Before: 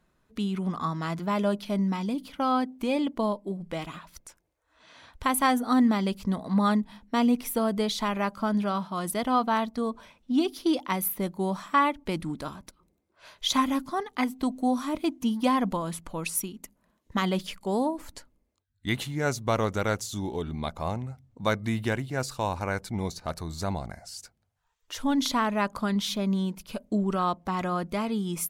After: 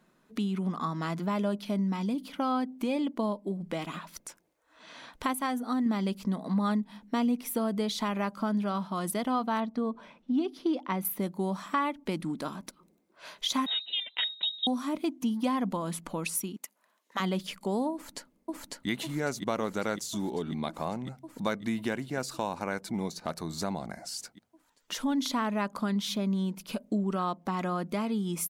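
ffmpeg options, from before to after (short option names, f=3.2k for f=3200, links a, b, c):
-filter_complex "[0:a]asettb=1/sr,asplit=3[a][b][c];[a]atrim=end=9.604[d];[b]atrim=start=9.6:end=11.05,asetpts=PTS-STARTPTS,afade=t=in:d=0.004:c=qsin,afade=t=out:st=1.446:d=0.004:c=qsin,aemphasis=mode=reproduction:type=75fm[e];[c]atrim=start=11.046[f];[d][e]acrossfade=d=0.004:c1=hsin:c2=qsin[g];[g][f]acrossfade=d=0.004:c1=qsin:c2=hsin,asettb=1/sr,asplit=3[h][i][j];[h]atrim=end=13.664[k];[i]atrim=start=13.66:end=14.67,asetpts=PTS-STARTPTS,afade=t=in:d=0.004:c=qsin,afade=t=out:st=1.006:d=0.004:c=qsin,lowpass=f=3.4k:t=q:w=0.5098,lowpass=f=3.4k:t=q:w=0.6013,lowpass=f=3.4k:t=q:w=0.9,lowpass=f=3.4k:t=q:w=2.563,afreqshift=-4000[l];[j]atrim=start=14.666[m];[k][l]acrossfade=d=0.004:c1=hsin:c2=qsin[n];[n][m]acrossfade=d=0.004:c1=qsin:c2=hsin,asettb=1/sr,asplit=3[o][p][q];[o]atrim=end=16.564[r];[p]atrim=start=16.56:end=17.2,asetpts=PTS-STARTPTS,afade=t=in:d=0.004:c=qsin,afade=t=out:st=0.636:d=0.004:c=qsin,highpass=780[s];[q]atrim=start=17.196[t];[r][s]acrossfade=d=0.004:c1=hsin:c2=qsin[u];[u][t]acrossfade=d=0.004:c1=qsin:c2=hsin,asplit=2[v][w];[w]afade=t=in:st=17.93:d=0.01,afade=t=out:st=18.88:d=0.01,aecho=0:1:550|1100|1650|2200|2750|3300|3850|4400|4950|5500|6050|6600:0.944061|0.708046|0.531034|0.398276|0.298707|0.22403|0.168023|0.126017|0.0945127|0.0708845|0.0531634|0.0398725[x];[v][x]amix=inputs=2:normalize=0,asplit=3[y][z][aa];[y]atrim=end=5.332[ab];[z]atrim=start=5.328:end=5.862,asetpts=PTS-STARTPTS,volume=-5dB[ac];[aa]atrim=start=5.858[ad];[ab][ac]acrossfade=d=0.004:c1=hsin:c2=hsin[ae];[ae][ad]acrossfade=d=0.004:c1=hsin:c2=hsin,lowshelf=f=130:t=q:w=1.5:g=-12.5,acompressor=threshold=-38dB:ratio=2,volume=4dB"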